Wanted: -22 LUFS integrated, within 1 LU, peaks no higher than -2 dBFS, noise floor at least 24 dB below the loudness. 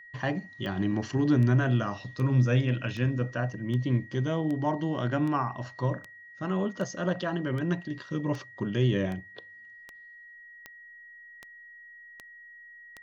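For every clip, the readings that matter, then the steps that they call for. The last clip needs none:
clicks 17; steady tone 1900 Hz; tone level -47 dBFS; loudness -29.0 LUFS; peak -13.0 dBFS; loudness target -22.0 LUFS
-> de-click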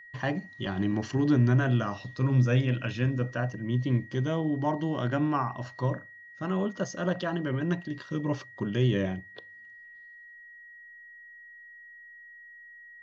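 clicks 0; steady tone 1900 Hz; tone level -47 dBFS
-> notch 1900 Hz, Q 30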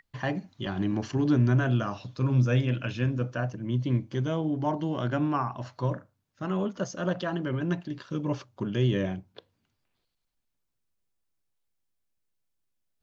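steady tone none; loudness -29.0 LUFS; peak -13.5 dBFS; loudness target -22.0 LUFS
-> gain +7 dB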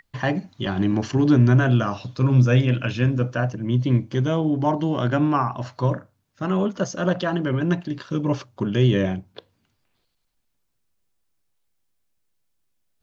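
loudness -22.0 LUFS; peak -6.5 dBFS; noise floor -72 dBFS

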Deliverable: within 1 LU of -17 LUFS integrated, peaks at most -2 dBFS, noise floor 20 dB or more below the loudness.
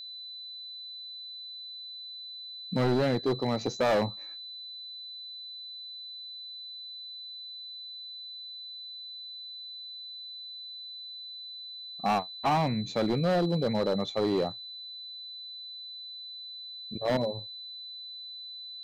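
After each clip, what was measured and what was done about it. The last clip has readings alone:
clipped 1.7%; flat tops at -21.5 dBFS; steady tone 4000 Hz; tone level -40 dBFS; loudness -33.5 LUFS; peak -21.5 dBFS; loudness target -17.0 LUFS
-> clip repair -21.5 dBFS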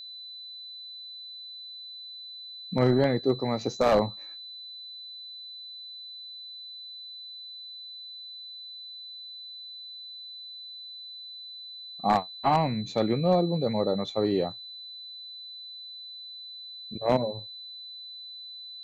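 clipped 0.0%; steady tone 4000 Hz; tone level -40 dBFS
-> notch 4000 Hz, Q 30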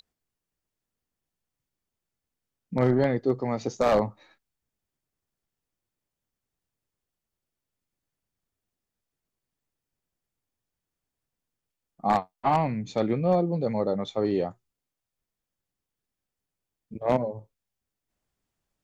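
steady tone none; loudness -26.5 LUFS; peak -12.0 dBFS; loudness target -17.0 LUFS
-> gain +9.5 dB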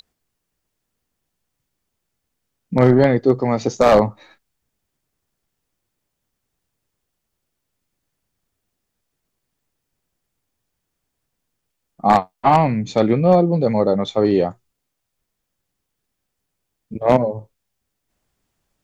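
loudness -17.0 LUFS; peak -2.5 dBFS; noise floor -78 dBFS

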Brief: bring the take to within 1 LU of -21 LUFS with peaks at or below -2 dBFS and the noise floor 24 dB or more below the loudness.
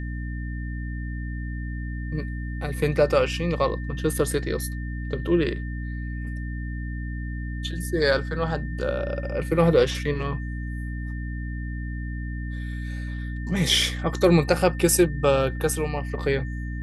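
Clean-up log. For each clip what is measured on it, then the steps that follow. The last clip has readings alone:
hum 60 Hz; harmonics up to 300 Hz; hum level -28 dBFS; steady tone 1800 Hz; tone level -41 dBFS; loudness -26.0 LUFS; peak -5.5 dBFS; loudness target -21.0 LUFS
-> de-hum 60 Hz, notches 5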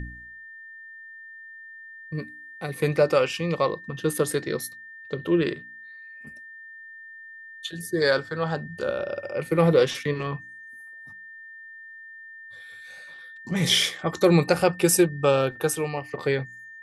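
hum none; steady tone 1800 Hz; tone level -41 dBFS
-> notch 1800 Hz, Q 30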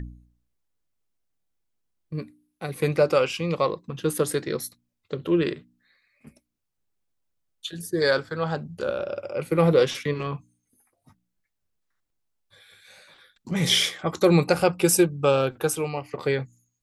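steady tone none; loudness -24.0 LUFS; peak -6.5 dBFS; loudness target -21.0 LUFS
-> gain +3 dB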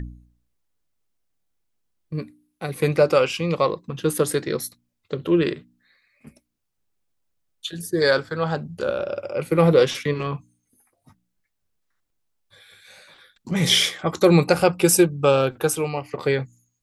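loudness -21.0 LUFS; peak -3.5 dBFS; noise floor -76 dBFS

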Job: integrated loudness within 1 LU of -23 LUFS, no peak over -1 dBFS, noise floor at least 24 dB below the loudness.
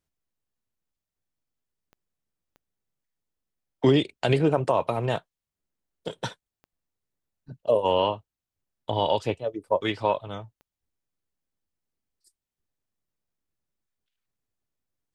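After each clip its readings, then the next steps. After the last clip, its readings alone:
clicks 4; loudness -25.5 LUFS; peak -8.0 dBFS; loudness target -23.0 LUFS
-> de-click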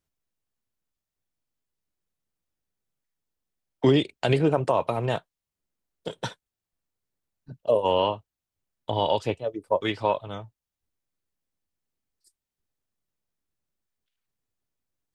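clicks 0; loudness -25.5 LUFS; peak -8.0 dBFS; loudness target -23.0 LUFS
-> gain +2.5 dB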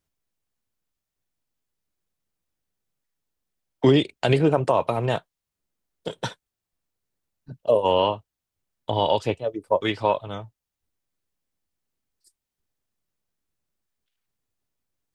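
loudness -23.0 LUFS; peak -5.5 dBFS; noise floor -86 dBFS

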